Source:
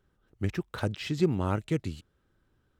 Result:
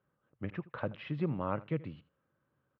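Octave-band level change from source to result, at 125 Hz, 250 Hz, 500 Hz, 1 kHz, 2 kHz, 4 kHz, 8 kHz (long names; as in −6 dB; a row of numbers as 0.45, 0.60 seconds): −7.0 dB, −7.0 dB, −6.5 dB, −3.0 dB, −6.5 dB, −13.5 dB, below −30 dB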